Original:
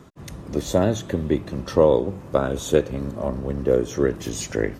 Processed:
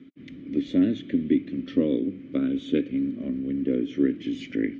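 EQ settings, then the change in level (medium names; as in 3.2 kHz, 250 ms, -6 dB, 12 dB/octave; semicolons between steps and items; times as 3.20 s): vowel filter i; low-pass 3.9 kHz 12 dB/octave; +9.0 dB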